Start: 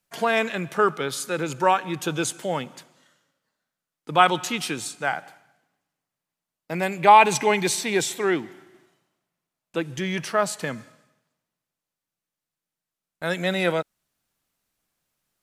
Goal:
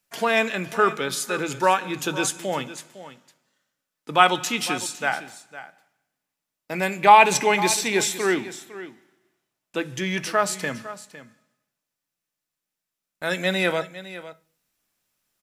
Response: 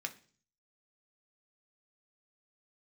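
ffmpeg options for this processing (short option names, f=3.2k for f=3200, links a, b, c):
-filter_complex "[0:a]aecho=1:1:506:0.178,asplit=2[a][b];[1:a]atrim=start_sample=2205,highshelf=f=5.5k:g=8.5[c];[b][c]afir=irnorm=-1:irlink=0,volume=-2.5dB[d];[a][d]amix=inputs=2:normalize=0,volume=-3dB"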